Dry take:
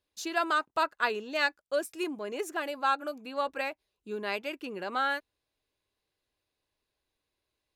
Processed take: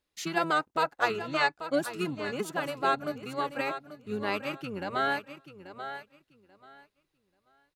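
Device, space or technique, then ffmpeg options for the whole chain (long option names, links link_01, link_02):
octave pedal: -filter_complex "[0:a]asettb=1/sr,asplit=3[link_01][link_02][link_03];[link_01]atrim=end=1.184[link_04];[link_02]atrim=start=1.18:end=1.77,asetpts=PTS-STARTPTS,afade=type=in:duration=0.004:curve=qsin,afade=type=out:start_time=0.586:duration=0.004:curve=qsin,lowpass=frequency=9700:width=0.5412,lowpass=frequency=9700:width=1.3066[link_05];[link_03]atrim=start=1.766[link_06];[link_04][link_05]acrossfade=duration=0.004:curve1=hsin:curve2=qsin[link_07];[link_07][link_06]acrossfade=duration=0.004:curve1=qsin:curve2=hsin,aecho=1:1:836|1672|2508:0.266|0.0532|0.0106,asplit=2[link_08][link_09];[link_09]asetrate=22050,aresample=44100,atempo=2,volume=-5dB[link_10];[link_08][link_10]amix=inputs=2:normalize=0"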